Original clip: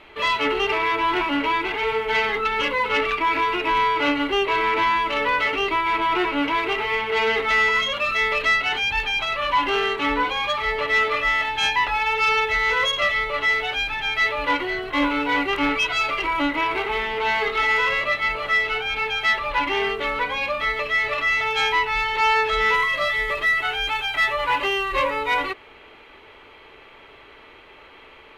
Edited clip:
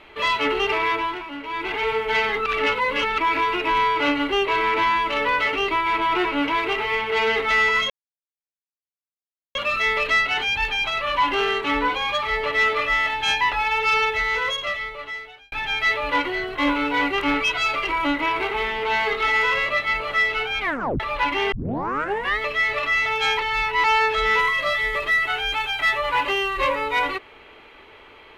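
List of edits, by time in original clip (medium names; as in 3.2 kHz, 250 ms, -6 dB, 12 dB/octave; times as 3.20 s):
0.92–1.74 s: dip -11 dB, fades 0.27 s
2.46–3.18 s: reverse
7.90 s: insert silence 1.65 s
12.32–13.87 s: fade out
18.95 s: tape stop 0.40 s
19.87 s: tape start 0.87 s
21.74–22.19 s: reverse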